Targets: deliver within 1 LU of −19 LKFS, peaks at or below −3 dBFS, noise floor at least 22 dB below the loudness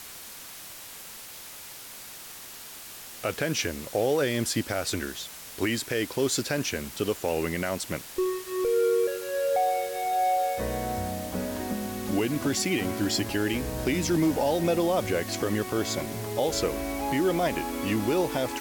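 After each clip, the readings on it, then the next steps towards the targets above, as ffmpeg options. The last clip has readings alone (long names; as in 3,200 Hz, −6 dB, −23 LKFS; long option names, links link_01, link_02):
background noise floor −43 dBFS; target noise floor −50 dBFS; integrated loudness −27.5 LKFS; sample peak −14.5 dBFS; target loudness −19.0 LKFS
→ -af "afftdn=noise_reduction=7:noise_floor=-43"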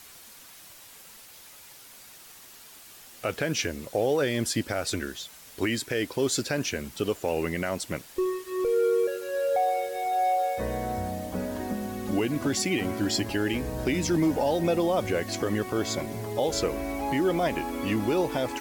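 background noise floor −49 dBFS; target noise floor −50 dBFS
→ -af "afftdn=noise_reduction=6:noise_floor=-49"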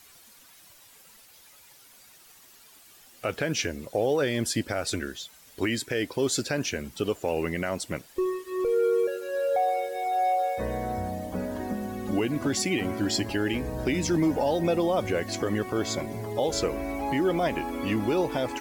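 background noise floor −54 dBFS; integrated loudness −28.0 LKFS; sample peak −15.0 dBFS; target loudness −19.0 LKFS
→ -af "volume=9dB"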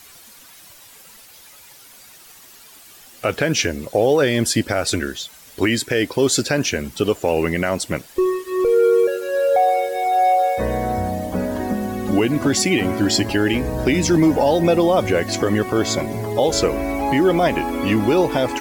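integrated loudness −19.0 LKFS; sample peak −6.0 dBFS; background noise floor −45 dBFS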